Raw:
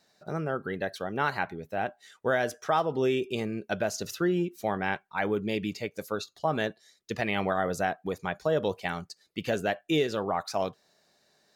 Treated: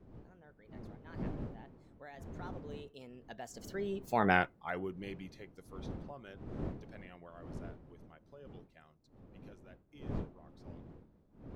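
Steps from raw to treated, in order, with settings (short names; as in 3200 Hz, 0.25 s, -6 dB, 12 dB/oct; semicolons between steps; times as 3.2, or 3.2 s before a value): Doppler pass-by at 4.29, 38 m/s, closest 3.2 m; wind noise 270 Hz -52 dBFS; gain +4 dB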